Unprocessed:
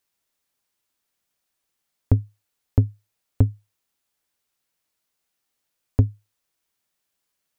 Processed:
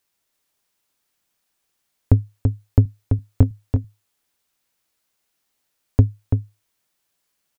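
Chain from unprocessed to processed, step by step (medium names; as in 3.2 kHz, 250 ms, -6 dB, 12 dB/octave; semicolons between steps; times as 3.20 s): 2.83–3.51 s: doubling 23 ms -8 dB; delay 335 ms -5.5 dB; trim +3.5 dB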